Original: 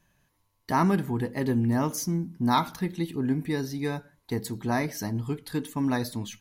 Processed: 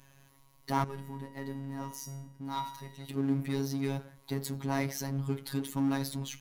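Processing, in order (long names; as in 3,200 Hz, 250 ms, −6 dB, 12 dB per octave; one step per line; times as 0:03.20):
notch filter 1,700 Hz, Q 14
power curve on the samples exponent 0.7
phases set to zero 137 Hz
0:00.84–0:03.09: tuned comb filter 240 Hz, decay 0.48 s, harmonics all, mix 70%
level −6.5 dB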